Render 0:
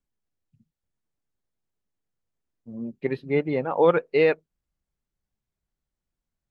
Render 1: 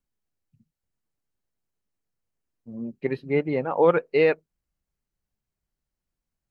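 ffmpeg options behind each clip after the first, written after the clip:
-af "bandreject=f=3500:w=11"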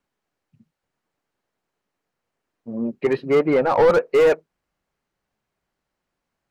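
-filter_complex "[0:a]asplit=2[s0][s1];[s1]highpass=f=720:p=1,volume=15.8,asoftclip=type=tanh:threshold=0.473[s2];[s0][s2]amix=inputs=2:normalize=0,lowpass=f=1200:p=1,volume=0.501,acrossover=split=1200[s3][s4];[s4]asoftclip=type=hard:threshold=0.0447[s5];[s3][s5]amix=inputs=2:normalize=0"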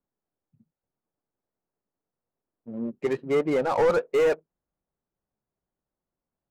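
-af "adynamicsmooth=sensitivity=5.5:basefreq=1100,volume=0.501"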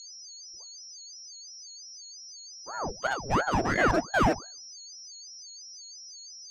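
-af "aeval=exprs='val(0)+0.00891*sin(2*PI*5500*n/s)':c=same,bandreject=f=50:t=h:w=6,bandreject=f=100:t=h:w=6,bandreject=f=150:t=h:w=6,bandreject=f=200:t=h:w=6,bandreject=f=250:t=h:w=6,bandreject=f=300:t=h:w=6,bandreject=f=350:t=h:w=6,bandreject=f=400:t=h:w=6,bandreject=f=450:t=h:w=6,bandreject=f=500:t=h:w=6,aeval=exprs='val(0)*sin(2*PI*670*n/s+670*0.8/2.9*sin(2*PI*2.9*n/s))':c=same,volume=1.12"

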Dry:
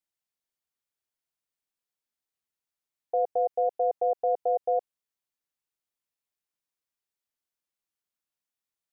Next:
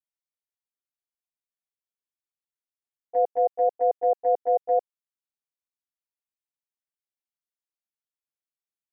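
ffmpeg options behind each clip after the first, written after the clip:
-af "agate=range=0.158:threshold=0.0562:ratio=16:detection=peak,volume=1.68"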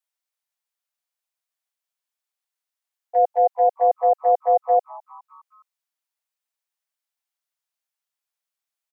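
-filter_complex "[0:a]highpass=f=580:w=0.5412,highpass=f=580:w=1.3066,asplit=5[s0][s1][s2][s3][s4];[s1]adelay=207,afreqshift=140,volume=0.0708[s5];[s2]adelay=414,afreqshift=280,volume=0.0403[s6];[s3]adelay=621,afreqshift=420,volume=0.0229[s7];[s4]adelay=828,afreqshift=560,volume=0.0132[s8];[s0][s5][s6][s7][s8]amix=inputs=5:normalize=0,volume=2.37"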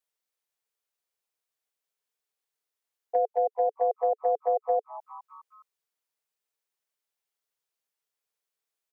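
-af "equalizer=f=440:t=o:w=0.44:g=11.5,acompressor=threshold=0.0794:ratio=5,volume=0.891"

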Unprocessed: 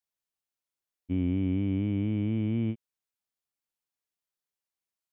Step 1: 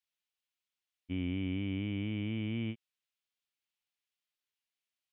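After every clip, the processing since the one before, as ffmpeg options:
-af "equalizer=f=2900:t=o:w=1.8:g=13.5,volume=0.422"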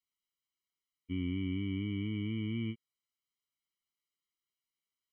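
-af "afftfilt=real='re*eq(mod(floor(b*sr/1024/470),2),0)':imag='im*eq(mod(floor(b*sr/1024/470),2),0)':win_size=1024:overlap=0.75"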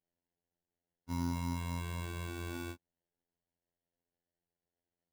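-af "acrusher=samples=36:mix=1:aa=0.000001,afftfilt=real='hypot(re,im)*cos(PI*b)':imag='0':win_size=2048:overlap=0.75,volume=1.19"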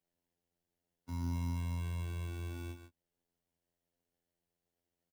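-filter_complex "[0:a]aecho=1:1:139:0.266,acrossover=split=110[s0][s1];[s1]alimiter=level_in=4.22:limit=0.0631:level=0:latency=1:release=489,volume=0.237[s2];[s0][s2]amix=inputs=2:normalize=0,volume=1.33"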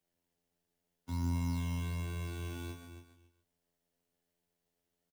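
-filter_complex "[0:a]aecho=1:1:274|548:0.335|0.0536,acrossover=split=520[s0][s1];[s0]acrusher=samples=10:mix=1:aa=0.000001:lfo=1:lforange=10:lforate=1.3[s2];[s2][s1]amix=inputs=2:normalize=0,volume=1.41"

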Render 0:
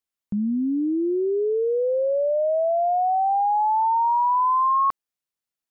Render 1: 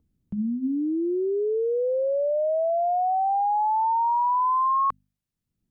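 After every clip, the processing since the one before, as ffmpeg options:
-filter_complex "[0:a]bandreject=f=50:t=h:w=6,bandreject=f=100:t=h:w=6,bandreject=f=150:t=h:w=6,bandreject=f=200:t=h:w=6,bandreject=f=250:t=h:w=6,acrossover=split=220[s0][s1];[s0]acompressor=mode=upward:threshold=0.0141:ratio=2.5[s2];[s2][s1]amix=inputs=2:normalize=0,volume=0.75"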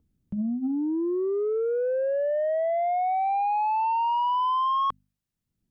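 -af "asoftclip=type=tanh:threshold=0.1"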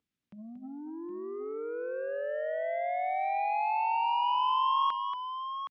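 -af "bandpass=f=2500:t=q:w=0.96:csg=0,aecho=1:1:232|768:0.398|0.355,volume=1.41"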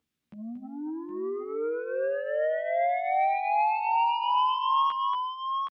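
-filter_complex "[0:a]alimiter=limit=0.0708:level=0:latency=1:release=170,asplit=2[s0][s1];[s1]adelay=13,volume=0.562[s2];[s0][s2]amix=inputs=2:normalize=0,volume=1.58"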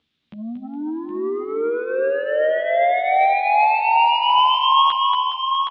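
-af "lowpass=f=3600:t=q:w=3.2,aecho=1:1:415|830|1245|1660|2075:0.224|0.112|0.056|0.028|0.014,volume=2.51"

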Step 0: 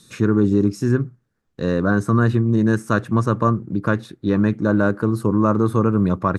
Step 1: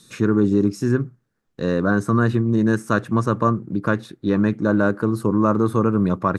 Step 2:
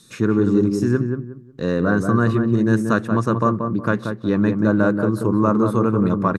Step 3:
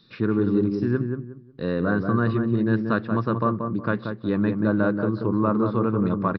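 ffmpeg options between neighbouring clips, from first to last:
-af "equalizer=f=67:w=1:g=-6.5"
-filter_complex "[0:a]asplit=2[s0][s1];[s1]adelay=182,lowpass=f=1200:p=1,volume=0.562,asplit=2[s2][s3];[s3]adelay=182,lowpass=f=1200:p=1,volume=0.27,asplit=2[s4][s5];[s5]adelay=182,lowpass=f=1200:p=1,volume=0.27,asplit=2[s6][s7];[s7]adelay=182,lowpass=f=1200:p=1,volume=0.27[s8];[s0][s2][s4][s6][s8]amix=inputs=5:normalize=0"
-af "aresample=11025,aresample=44100,volume=0.596"

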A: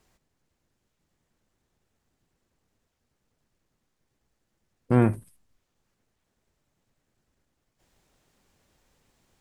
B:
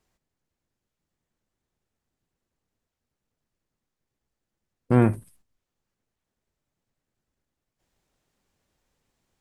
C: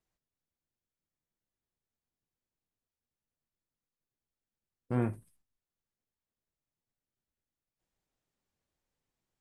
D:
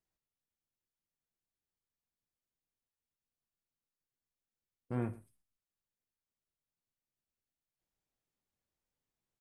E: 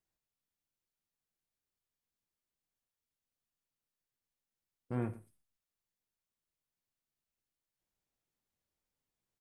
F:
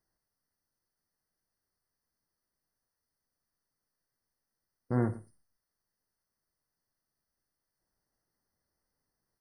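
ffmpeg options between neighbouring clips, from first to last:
-af "agate=range=0.355:threshold=0.00141:ratio=16:detection=peak,volume=1.19"
-af "flanger=delay=6:depth=7.4:regen=-68:speed=0.76:shape=sinusoidal,volume=0.398"
-af "aecho=1:1:115:0.1,volume=0.531"
-af "aecho=1:1:88:0.112"
-af "afftfilt=real='re*eq(mod(floor(b*sr/1024/2100),2),0)':imag='im*eq(mod(floor(b*sr/1024/2100),2),0)':win_size=1024:overlap=0.75,volume=2.24"

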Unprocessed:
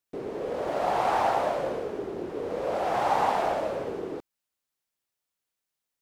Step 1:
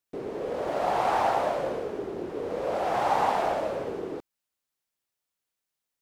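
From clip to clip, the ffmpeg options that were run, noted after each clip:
-af anull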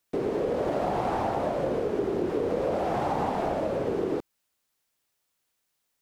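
-filter_complex "[0:a]acrossover=split=380[s0][s1];[s1]acompressor=threshold=0.0126:ratio=6[s2];[s0][s2]amix=inputs=2:normalize=0,volume=2.51"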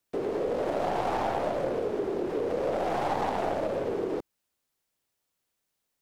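-filter_complex "[0:a]acrossover=split=340|710[s0][s1][s2];[s0]asoftclip=type=tanh:threshold=0.0112[s3];[s2]aeval=exprs='0.0794*(cos(1*acos(clip(val(0)/0.0794,-1,1)))-cos(1*PI/2))+0.00891*(cos(6*acos(clip(val(0)/0.0794,-1,1)))-cos(6*PI/2))+0.00398*(cos(7*acos(clip(val(0)/0.0794,-1,1)))-cos(7*PI/2))':c=same[s4];[s3][s1][s4]amix=inputs=3:normalize=0"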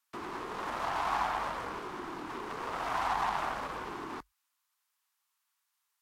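-af "lowshelf=f=800:t=q:w=3:g=-10.5,afreqshift=-50" -ar 44100 -c:a libvorbis -b:a 64k

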